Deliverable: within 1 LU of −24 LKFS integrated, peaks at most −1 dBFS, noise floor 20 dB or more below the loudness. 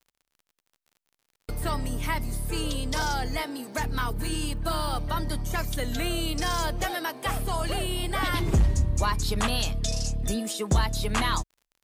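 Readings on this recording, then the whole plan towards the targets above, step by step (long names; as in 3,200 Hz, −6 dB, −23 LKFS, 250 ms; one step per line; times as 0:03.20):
crackle rate 42 per second; integrated loudness −28.5 LKFS; sample peak −13.5 dBFS; target loudness −24.0 LKFS
→ click removal
level +4.5 dB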